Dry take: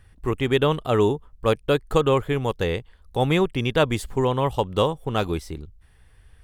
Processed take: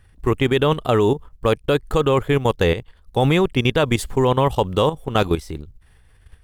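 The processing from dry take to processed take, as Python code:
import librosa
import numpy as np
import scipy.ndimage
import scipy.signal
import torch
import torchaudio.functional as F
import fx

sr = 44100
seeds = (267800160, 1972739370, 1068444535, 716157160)

y = fx.quant_float(x, sr, bits=6)
y = fx.level_steps(y, sr, step_db=12)
y = y * 10.0 ** (8.5 / 20.0)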